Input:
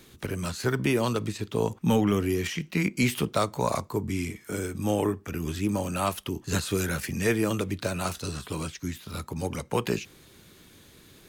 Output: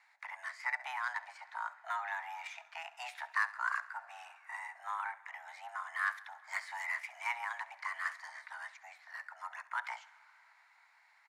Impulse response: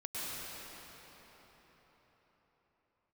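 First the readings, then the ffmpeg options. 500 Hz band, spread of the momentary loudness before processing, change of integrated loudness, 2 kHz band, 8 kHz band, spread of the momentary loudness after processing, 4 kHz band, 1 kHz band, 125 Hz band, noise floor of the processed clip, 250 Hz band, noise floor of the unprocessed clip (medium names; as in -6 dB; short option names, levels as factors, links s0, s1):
-30.0 dB, 9 LU, -11.0 dB, -1.5 dB, -21.5 dB, 12 LU, -16.0 dB, -5.5 dB, under -40 dB, -67 dBFS, under -40 dB, -54 dBFS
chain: -filter_complex "[0:a]highpass=670,highshelf=f=2000:t=q:w=3:g=-7.5,adynamicsmooth=sensitivity=5:basefreq=4800,afreqshift=490,aecho=1:1:68|136|204|272:0.133|0.0653|0.032|0.0157,asplit=2[s0][s1];[1:a]atrim=start_sample=2205,adelay=145[s2];[s1][s2]afir=irnorm=-1:irlink=0,volume=0.0531[s3];[s0][s3]amix=inputs=2:normalize=0,volume=0.473"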